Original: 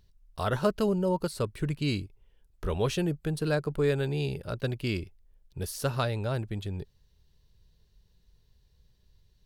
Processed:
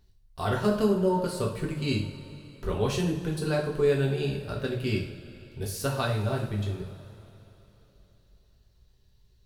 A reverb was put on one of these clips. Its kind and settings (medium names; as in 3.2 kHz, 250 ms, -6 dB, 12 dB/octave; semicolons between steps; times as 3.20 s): two-slope reverb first 0.48 s, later 3.5 s, from -18 dB, DRR -2 dB; trim -2.5 dB